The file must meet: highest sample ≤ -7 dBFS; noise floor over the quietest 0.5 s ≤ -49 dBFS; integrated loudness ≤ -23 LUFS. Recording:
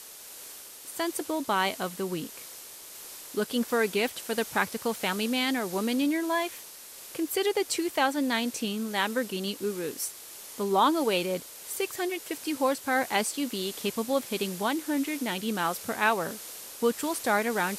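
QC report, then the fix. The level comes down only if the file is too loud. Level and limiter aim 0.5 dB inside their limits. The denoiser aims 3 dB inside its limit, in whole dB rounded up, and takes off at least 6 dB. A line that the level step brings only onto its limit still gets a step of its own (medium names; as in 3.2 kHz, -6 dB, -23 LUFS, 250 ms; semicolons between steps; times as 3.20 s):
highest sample -10.5 dBFS: pass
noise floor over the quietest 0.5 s -46 dBFS: fail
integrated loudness -29.0 LUFS: pass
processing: noise reduction 6 dB, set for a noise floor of -46 dBFS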